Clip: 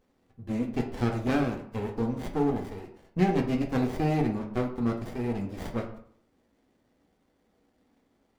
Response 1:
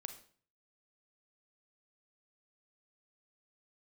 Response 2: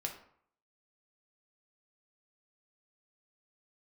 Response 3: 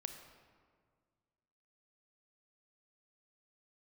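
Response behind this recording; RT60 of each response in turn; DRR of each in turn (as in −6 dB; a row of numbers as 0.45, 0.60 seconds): 2; 0.45, 0.60, 1.8 seconds; 7.0, 1.5, 6.5 decibels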